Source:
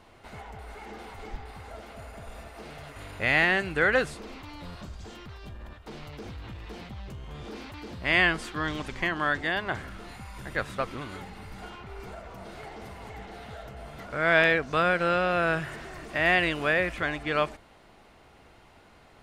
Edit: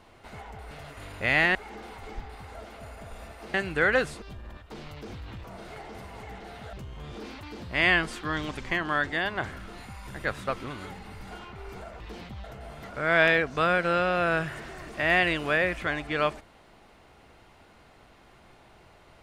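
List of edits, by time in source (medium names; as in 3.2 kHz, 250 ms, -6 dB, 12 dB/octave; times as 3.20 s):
2.70–3.54 s: move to 0.71 s
4.22–5.38 s: delete
6.60–7.04 s: swap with 12.31–13.60 s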